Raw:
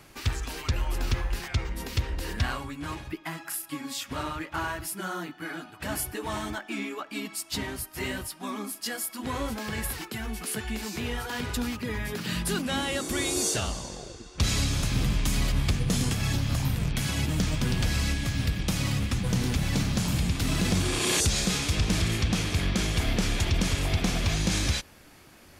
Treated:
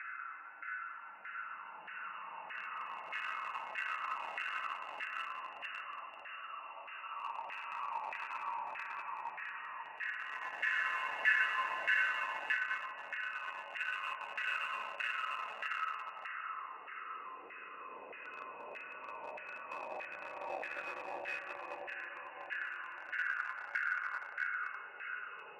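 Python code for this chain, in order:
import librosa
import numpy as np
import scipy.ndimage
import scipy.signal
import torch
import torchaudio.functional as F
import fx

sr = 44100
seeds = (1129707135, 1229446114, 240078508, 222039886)

p1 = fx.delta_mod(x, sr, bps=64000, step_db=-47.0)
p2 = fx.peak_eq(p1, sr, hz=400.0, db=-13.5, octaves=1.1)
p3 = fx.chopper(p2, sr, hz=5.7, depth_pct=65, duty_pct=15)
p4 = p3 + fx.echo_single(p3, sr, ms=616, db=-11.0, dry=0)
p5 = fx.freq_invert(p4, sr, carrier_hz=2800)
p6 = fx.paulstretch(p5, sr, seeds[0], factor=18.0, window_s=0.25, from_s=5.69)
p7 = fx.quant_dither(p6, sr, seeds[1], bits=6, dither='none')
p8 = p6 + F.gain(torch.from_numpy(p7), -5.5).numpy()
p9 = fx.filter_lfo_bandpass(p8, sr, shape='saw_down', hz=1.6, low_hz=750.0, high_hz=1800.0, q=3.8)
y = F.gain(torch.from_numpy(p9), 10.0).numpy()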